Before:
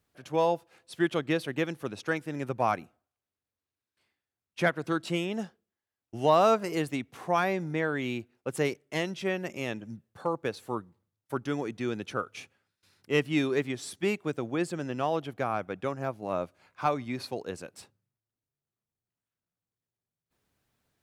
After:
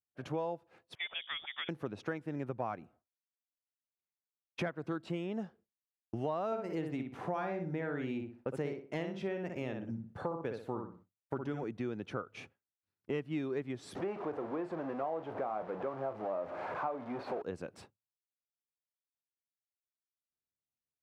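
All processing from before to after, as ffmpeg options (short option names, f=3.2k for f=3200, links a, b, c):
-filter_complex "[0:a]asettb=1/sr,asplit=3[a][b][c];[a]atrim=end=0.954[d];[b]atrim=start=0.95:end=1.69,asetpts=PTS-STARTPTS,afade=t=in:d=0.004:c=qsin,afade=t=out:st=0.736:d=0.004:c=qsin,acrossover=split=480 2200:gain=0.126 1 0.126[e][f][g];[e][f][g]amix=inputs=3:normalize=0,bandreject=f=53.78:t=h:w=4,bandreject=f=107.56:t=h:w=4,bandreject=f=161.34:t=h:w=4,bandreject=f=215.12:t=h:w=4,bandreject=f=268.9:t=h:w=4,bandreject=f=322.68:t=h:w=4,bandreject=f=376.46:t=h:w=4,bandreject=f=430.24:t=h:w=4,bandreject=f=484.02:t=h:w=4,bandreject=f=537.8:t=h:w=4,bandreject=f=591.58:t=h:w=4,bandreject=f=645.36:t=h:w=4,bandreject=f=699.14:t=h:w=4,bandreject=f=752.92:t=h:w=4,bandreject=f=806.7:t=h:w=4,bandreject=f=860.48:t=h:w=4,lowpass=f=3.2k:t=q:w=0.5098,lowpass=f=3.2k:t=q:w=0.6013,lowpass=f=3.2k:t=q:w=0.9,lowpass=f=3.2k:t=q:w=2.563,afreqshift=-3800[h];[c]atrim=start=1.686[i];[d][h]acrossfade=d=0.004:c1=hsin:c2=qsin[j];[j][i]acrossfade=d=0.004:c1=qsin:c2=hsin,asettb=1/sr,asplit=3[k][l][m];[k]atrim=end=6.464[n];[l]atrim=start=6.46:end=11.64,asetpts=PTS-STARTPTS,afade=t=in:d=0.004:c=qsin,afade=t=out:st=5.176:d=0.004:c=qsin,bandreject=f=1.1k:w=16,asplit=2[o][p];[p]adelay=61,lowpass=f=2.7k:p=1,volume=-5dB,asplit=2[q][r];[r]adelay=61,lowpass=f=2.7k:p=1,volume=0.27,asplit=2[s][t];[t]adelay=61,lowpass=f=2.7k:p=1,volume=0.27,asplit=2[u][v];[v]adelay=61,lowpass=f=2.7k:p=1,volume=0.27[w];[o][q][s][u][w]amix=inputs=5:normalize=0,atrim=end_sample=228438[x];[m]atrim=start=11.636[y];[n][x]acrossfade=d=0.004:c1=hsin:c2=qsin[z];[z][y]acrossfade=d=0.004:c1=qsin:c2=hsin,asettb=1/sr,asplit=3[aa][ab][ac];[aa]atrim=end=13.954[ad];[ab]atrim=start=13.95:end=17.42,asetpts=PTS-STARTPTS,afade=t=in:d=0.004:c=qsin,afade=t=out:st=3.466:d=0.004:c=qsin,aeval=exprs='val(0)+0.5*0.0376*sgn(val(0))':c=same,bandpass=f=730:t=q:w=1.1,asplit=2[ae][af];[af]adelay=37,volume=-11dB[ag];[ae][ag]amix=inputs=2:normalize=0,atrim=end_sample=153027[ah];[ac]atrim=start=17.416[ai];[ad][ah]acrossfade=d=0.004:c1=hsin:c2=qsin[aj];[aj][ai]acrossfade=d=0.004:c1=qsin:c2=hsin,lowpass=f=1.2k:p=1,agate=range=-33dB:threshold=-53dB:ratio=3:detection=peak,acompressor=threshold=-43dB:ratio=4,volume=6.5dB"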